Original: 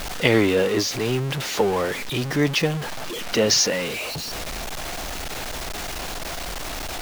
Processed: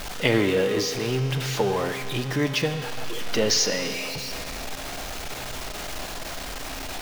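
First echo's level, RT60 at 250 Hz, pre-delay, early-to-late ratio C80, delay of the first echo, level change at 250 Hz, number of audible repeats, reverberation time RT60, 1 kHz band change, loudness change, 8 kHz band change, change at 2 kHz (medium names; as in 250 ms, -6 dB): no echo, 2.5 s, 3 ms, 9.0 dB, no echo, -3.0 dB, no echo, 2.5 s, -2.5 dB, -2.5 dB, -3.0 dB, -3.0 dB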